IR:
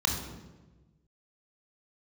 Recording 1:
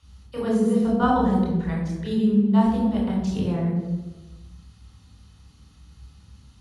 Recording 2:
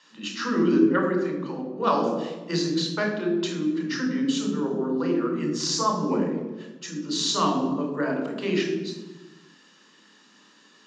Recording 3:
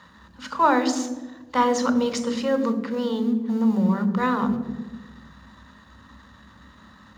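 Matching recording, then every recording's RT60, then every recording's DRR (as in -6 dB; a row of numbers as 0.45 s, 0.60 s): 2; 1.2 s, 1.2 s, 1.2 s; -3.5 dB, 1.5 dB, 10.0 dB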